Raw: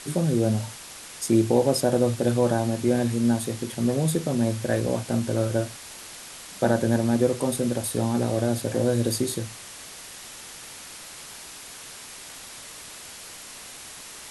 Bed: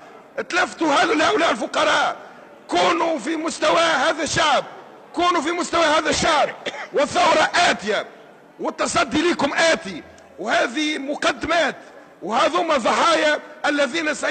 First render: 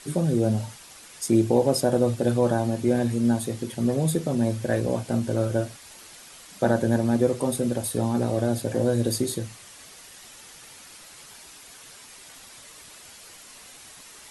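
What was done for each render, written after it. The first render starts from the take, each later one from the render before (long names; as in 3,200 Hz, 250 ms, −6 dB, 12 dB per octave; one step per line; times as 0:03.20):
broadband denoise 7 dB, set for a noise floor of −42 dBFS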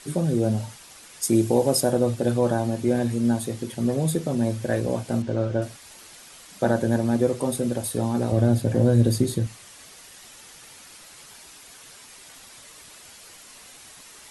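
0:01.23–0:01.92: high-shelf EQ 7,700 Hz +10 dB
0:05.22–0:05.62: high-frequency loss of the air 120 metres
0:08.32–0:09.47: bass and treble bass +9 dB, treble −3 dB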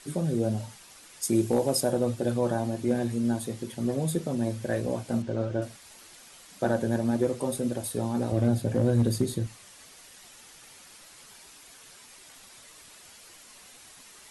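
flanger 1.8 Hz, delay 2.6 ms, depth 3.2 ms, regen +78%
hard clipping −14.5 dBFS, distortion −29 dB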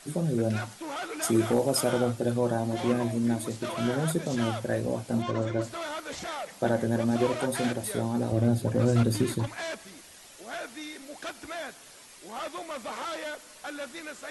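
mix in bed −18.5 dB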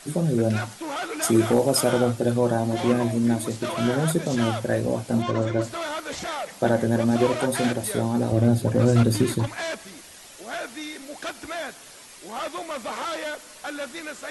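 level +5 dB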